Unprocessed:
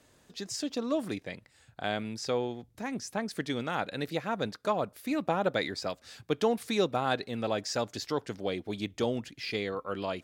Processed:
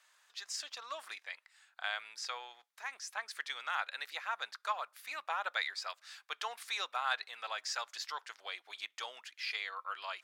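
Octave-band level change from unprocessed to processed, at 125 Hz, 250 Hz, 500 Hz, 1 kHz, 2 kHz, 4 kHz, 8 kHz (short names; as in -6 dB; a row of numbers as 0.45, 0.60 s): under -40 dB, under -40 dB, -20.0 dB, -4.5 dB, 0.0 dB, -2.0 dB, -3.5 dB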